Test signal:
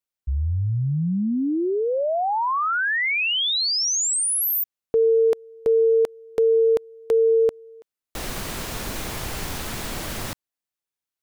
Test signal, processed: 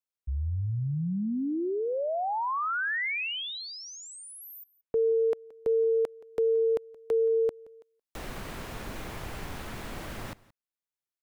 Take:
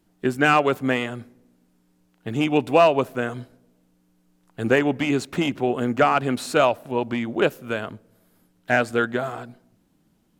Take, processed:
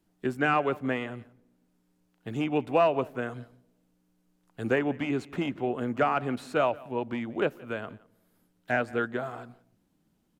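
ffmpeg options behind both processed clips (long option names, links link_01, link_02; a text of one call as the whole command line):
ffmpeg -i in.wav -filter_complex "[0:a]acrossover=split=440|2900[link_01][link_02][link_03];[link_03]acompressor=threshold=-39dB:ratio=6:attack=2.9:release=989:detection=rms[link_04];[link_01][link_02][link_04]amix=inputs=3:normalize=0,aecho=1:1:174:0.0794,volume=-7dB" out.wav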